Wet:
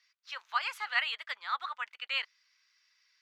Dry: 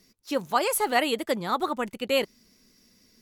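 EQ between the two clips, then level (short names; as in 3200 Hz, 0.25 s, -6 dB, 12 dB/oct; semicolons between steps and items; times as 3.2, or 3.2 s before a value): HPF 1300 Hz 24 dB/oct; air absorption 220 m; +1.0 dB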